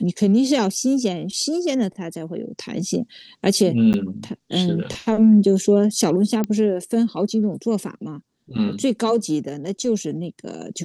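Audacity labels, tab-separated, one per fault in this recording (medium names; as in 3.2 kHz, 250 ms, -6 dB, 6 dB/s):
3.930000	3.940000	dropout 9.9 ms
6.440000	6.440000	pop -11 dBFS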